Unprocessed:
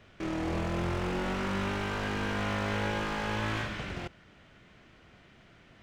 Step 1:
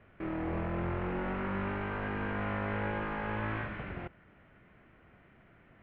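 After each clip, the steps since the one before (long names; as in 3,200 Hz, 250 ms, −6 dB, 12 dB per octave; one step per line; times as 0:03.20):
low-pass filter 2,300 Hz 24 dB per octave
level −2.5 dB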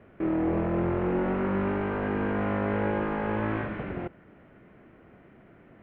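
parametric band 340 Hz +10.5 dB 2.7 octaves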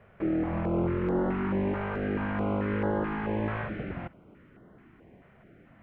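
notch on a step sequencer 4.6 Hz 300–2,400 Hz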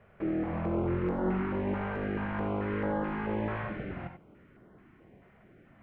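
reverb whose tail is shaped and stops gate 110 ms rising, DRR 6 dB
level −3 dB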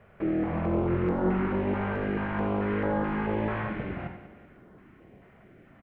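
repeating echo 191 ms, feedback 45%, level −13 dB
level +3.5 dB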